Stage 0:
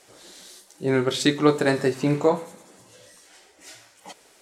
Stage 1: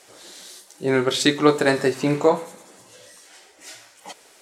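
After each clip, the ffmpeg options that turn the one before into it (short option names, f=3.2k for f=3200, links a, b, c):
-af "lowshelf=f=250:g=-7,volume=4dB"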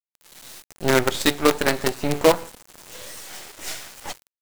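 -af "dynaudnorm=f=140:g=7:m=15dB,acrusher=bits=3:dc=4:mix=0:aa=0.000001,volume=-2.5dB"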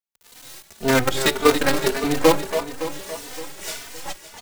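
-filter_complex "[0:a]asplit=2[a][b];[b]aecho=0:1:282|564|846|1128|1410|1692|1974:0.355|0.209|0.124|0.0729|0.043|0.0254|0.015[c];[a][c]amix=inputs=2:normalize=0,asplit=2[d][e];[e]adelay=3.2,afreqshift=1.7[f];[d][f]amix=inputs=2:normalize=1,volume=3.5dB"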